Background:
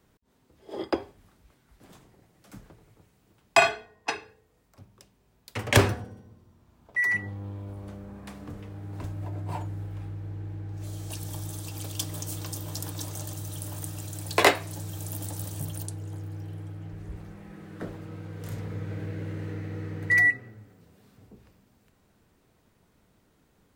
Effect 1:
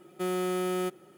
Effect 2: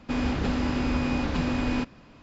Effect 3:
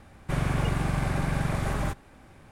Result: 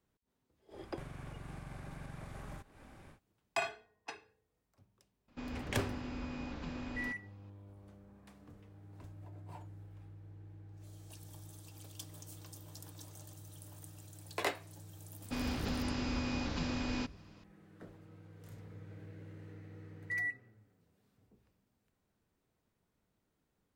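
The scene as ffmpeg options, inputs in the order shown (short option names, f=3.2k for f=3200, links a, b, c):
-filter_complex "[2:a]asplit=2[a][b];[0:a]volume=-16dB[c];[3:a]acompressor=threshold=-39dB:ratio=6:attack=2.7:release=196:knee=1:detection=rms[d];[b]equalizer=f=5.4k:t=o:w=1.3:g=9[e];[d]atrim=end=2.51,asetpts=PTS-STARTPTS,volume=-4dB,afade=t=in:d=0.1,afade=t=out:st=2.41:d=0.1,adelay=690[f];[a]atrim=end=2.22,asetpts=PTS-STARTPTS,volume=-16dB,afade=t=in:d=0.004:c=hsin,afade=t=out:st=2.216:d=0.004:c=hsin,adelay=5280[g];[e]atrim=end=2.22,asetpts=PTS-STARTPTS,volume=-10.5dB,afade=t=in:d=0.004:c=hsin,afade=t=out:st=2.216:d=0.004:c=hsin,adelay=15220[h];[c][f][g][h]amix=inputs=4:normalize=0"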